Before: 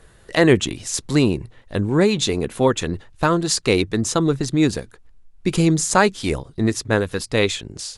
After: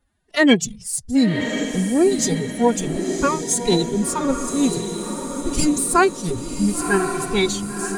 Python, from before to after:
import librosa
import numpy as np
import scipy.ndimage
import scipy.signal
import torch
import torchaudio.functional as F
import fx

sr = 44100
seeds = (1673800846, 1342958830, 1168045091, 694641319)

p1 = fx.noise_reduce_blind(x, sr, reduce_db=21)
p2 = fx.pitch_keep_formants(p1, sr, semitones=10.5)
p3 = p2 + fx.echo_diffused(p2, sr, ms=1069, feedback_pct=50, wet_db=-6.5, dry=0)
y = F.gain(torch.from_numpy(p3), 1.0).numpy()